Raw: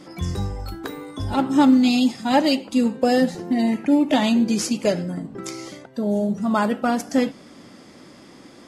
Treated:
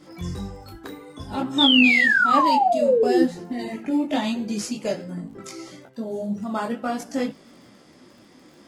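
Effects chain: crackle 39 per s -39 dBFS; painted sound fall, 1.58–3.23 s, 320–3700 Hz -13 dBFS; detune thickener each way 19 cents; trim -1.5 dB

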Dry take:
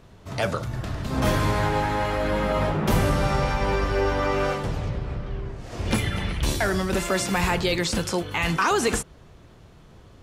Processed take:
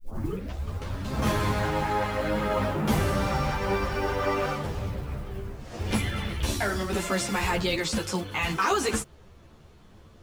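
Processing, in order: tape start-up on the opening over 1.03 s; modulation noise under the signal 29 dB; three-phase chorus

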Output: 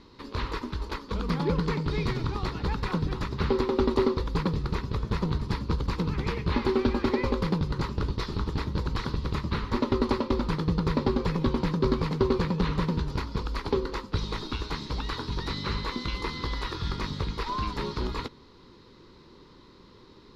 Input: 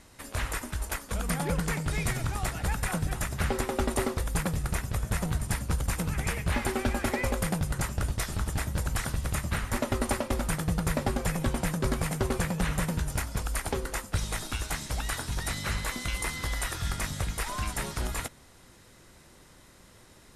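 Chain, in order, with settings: FFT filter 100 Hz 0 dB, 430 Hz +9 dB, 690 Hz -10 dB, 990 Hz +7 dB, 1.6 kHz -5 dB, 3 kHz -2 dB, 4.3 kHz +6 dB, 8.7 kHz -28 dB, 13 kHz -24 dB

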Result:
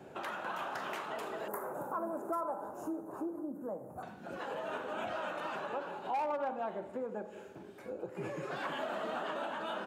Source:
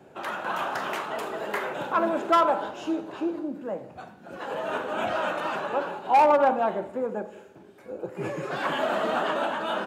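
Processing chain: 1.48–4.03 s: FFT filter 1.2 kHz 0 dB, 3.2 kHz -30 dB, 11 kHz +13 dB; compression 2.5:1, threshold -41 dBFS, peak gain reduction 16.5 dB

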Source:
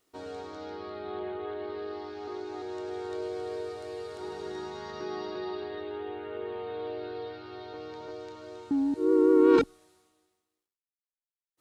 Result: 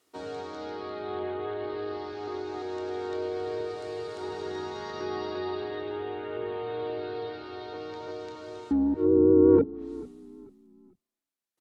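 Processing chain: octave divider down 2 oct, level -5 dB; high-pass 110 Hz 12 dB/octave; low-pass that closes with the level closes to 550 Hz, closed at -21.5 dBFS; bass shelf 200 Hz -3.5 dB; on a send: frequency-shifting echo 439 ms, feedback 34%, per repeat -31 Hz, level -20 dB; on the sum: trim +3.5 dB

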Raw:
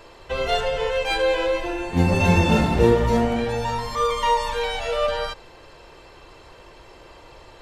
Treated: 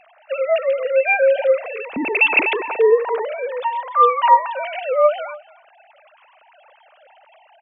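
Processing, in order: formants replaced by sine waves; delay 286 ms -21 dB; trim +3 dB

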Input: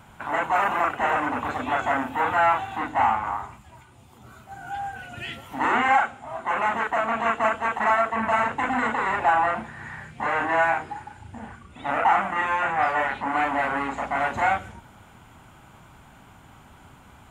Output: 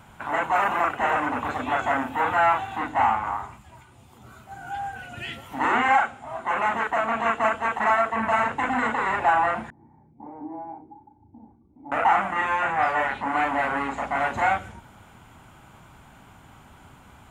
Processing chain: 9.70–11.92 s: cascade formant filter u

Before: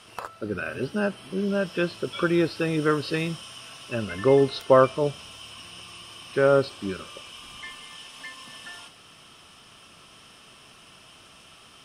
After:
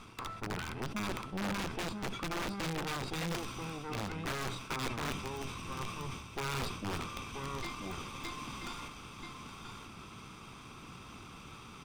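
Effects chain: comb filter that takes the minimum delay 0.83 ms; tilt shelf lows +4.5 dB, about 1.2 kHz; reverse; compression 6:1, threshold -37 dBFS, peak gain reduction 21 dB; reverse; delay 983 ms -6.5 dB; integer overflow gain 32.5 dB; treble shelf 9 kHz -11.5 dB; decay stretcher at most 65 dB/s; trim +2.5 dB

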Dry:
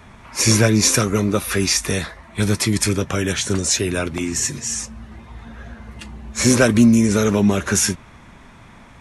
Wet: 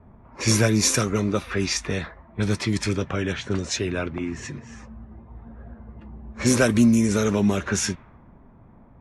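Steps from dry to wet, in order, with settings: level-controlled noise filter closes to 640 Hz, open at -11 dBFS; trim -4.5 dB

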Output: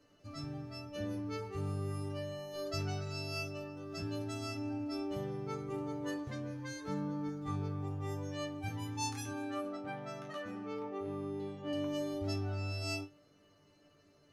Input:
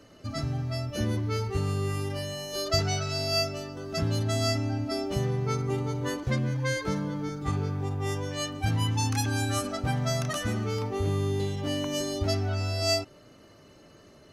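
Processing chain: 9.31–11.73 s: three-band isolator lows -22 dB, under 150 Hz, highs -13 dB, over 3.4 kHz; chord resonator G2 fifth, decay 0.2 s; trim -3.5 dB

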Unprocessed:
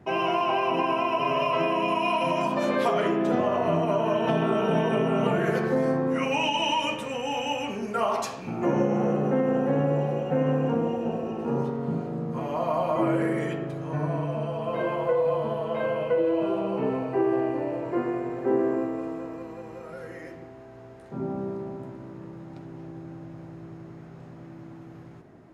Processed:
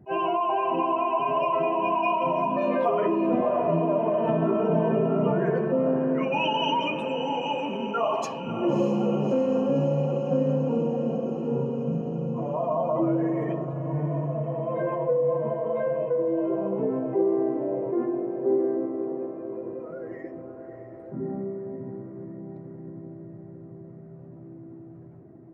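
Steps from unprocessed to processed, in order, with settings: spectral contrast enhancement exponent 1.7; echo that smears into a reverb 617 ms, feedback 68%, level -10 dB; attacks held to a fixed rise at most 380 dB/s

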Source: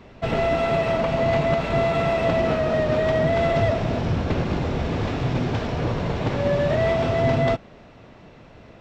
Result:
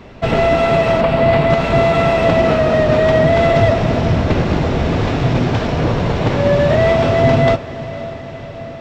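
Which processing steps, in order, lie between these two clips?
1.01–1.50 s: peaking EQ 6.3 kHz -12.5 dB 0.48 oct; on a send: echo that smears into a reverb 544 ms, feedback 67%, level -15.5 dB; on the sum: trim +8 dB

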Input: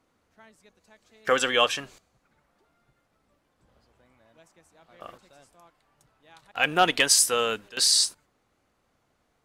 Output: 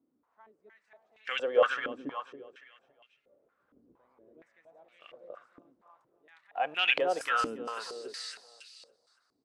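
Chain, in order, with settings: 1.70–5.05 s: resonant low shelf 630 Hz +6.5 dB, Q 1.5; feedback delay 280 ms, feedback 38%, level -4 dB; step-sequenced band-pass 4.3 Hz 280–2600 Hz; trim +3 dB

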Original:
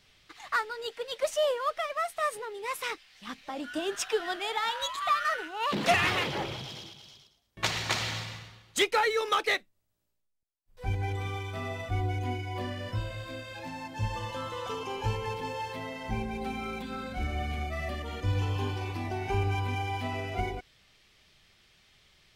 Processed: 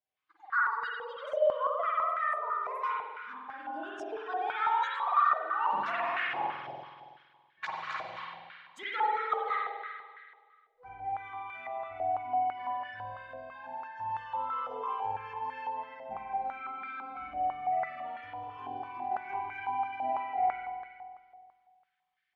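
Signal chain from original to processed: expander on every frequency bin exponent 1.5; compression, threshold -33 dBFS, peak gain reduction 12 dB; spring tank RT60 1.8 s, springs 47 ms, chirp 55 ms, DRR -6.5 dB; step-sequenced band-pass 6 Hz 690–1600 Hz; trim +7.5 dB

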